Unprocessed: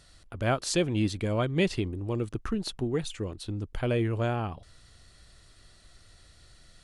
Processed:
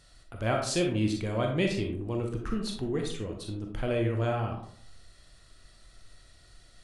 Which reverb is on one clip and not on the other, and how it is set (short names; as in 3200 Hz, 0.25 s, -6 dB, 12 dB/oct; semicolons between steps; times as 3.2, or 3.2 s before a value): digital reverb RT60 0.6 s, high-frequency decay 0.45×, pre-delay 0 ms, DRR 1.5 dB; gain -3 dB